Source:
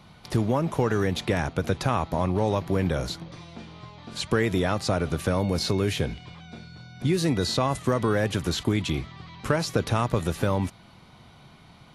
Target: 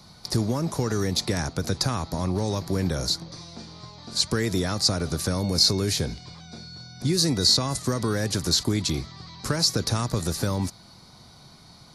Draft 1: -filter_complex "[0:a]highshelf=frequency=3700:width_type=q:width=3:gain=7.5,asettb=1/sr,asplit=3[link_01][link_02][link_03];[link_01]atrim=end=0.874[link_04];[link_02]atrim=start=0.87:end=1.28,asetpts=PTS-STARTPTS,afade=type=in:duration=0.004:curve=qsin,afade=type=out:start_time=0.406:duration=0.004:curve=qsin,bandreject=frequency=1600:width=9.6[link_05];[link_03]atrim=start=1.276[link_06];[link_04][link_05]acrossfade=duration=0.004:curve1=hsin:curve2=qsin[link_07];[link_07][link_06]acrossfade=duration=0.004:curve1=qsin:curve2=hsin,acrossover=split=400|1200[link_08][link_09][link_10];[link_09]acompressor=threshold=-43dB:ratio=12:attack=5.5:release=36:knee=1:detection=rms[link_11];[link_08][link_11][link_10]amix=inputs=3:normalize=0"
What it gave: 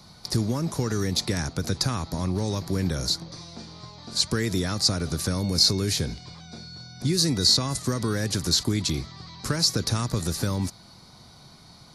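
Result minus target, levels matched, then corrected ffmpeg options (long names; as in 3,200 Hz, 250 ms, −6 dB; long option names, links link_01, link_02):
downward compressor: peak gain reduction +8 dB
-filter_complex "[0:a]highshelf=frequency=3700:width_type=q:width=3:gain=7.5,asettb=1/sr,asplit=3[link_01][link_02][link_03];[link_01]atrim=end=0.874[link_04];[link_02]atrim=start=0.87:end=1.28,asetpts=PTS-STARTPTS,afade=type=in:duration=0.004:curve=qsin,afade=type=out:start_time=0.406:duration=0.004:curve=qsin,bandreject=frequency=1600:width=9.6[link_05];[link_03]atrim=start=1.276[link_06];[link_04][link_05]acrossfade=duration=0.004:curve1=hsin:curve2=qsin[link_07];[link_07][link_06]acrossfade=duration=0.004:curve1=qsin:curve2=hsin,acrossover=split=400|1200[link_08][link_09][link_10];[link_09]acompressor=threshold=-34.5dB:ratio=12:attack=5.5:release=36:knee=1:detection=rms[link_11];[link_08][link_11][link_10]amix=inputs=3:normalize=0"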